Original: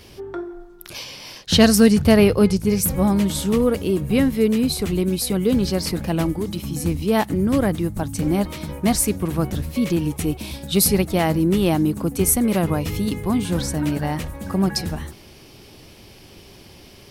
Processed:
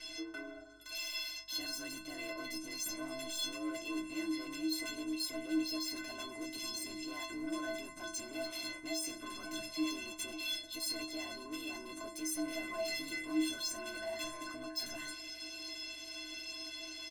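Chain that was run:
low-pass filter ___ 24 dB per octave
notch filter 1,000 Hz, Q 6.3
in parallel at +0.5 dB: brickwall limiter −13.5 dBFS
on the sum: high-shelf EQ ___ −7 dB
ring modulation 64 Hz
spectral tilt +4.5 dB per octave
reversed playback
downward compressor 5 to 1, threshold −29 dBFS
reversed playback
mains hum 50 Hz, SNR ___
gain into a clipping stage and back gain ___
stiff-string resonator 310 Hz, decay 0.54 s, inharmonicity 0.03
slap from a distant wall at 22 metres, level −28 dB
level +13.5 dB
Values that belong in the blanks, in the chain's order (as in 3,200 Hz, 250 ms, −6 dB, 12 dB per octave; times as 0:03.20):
7,200 Hz, 4,500 Hz, 24 dB, 32.5 dB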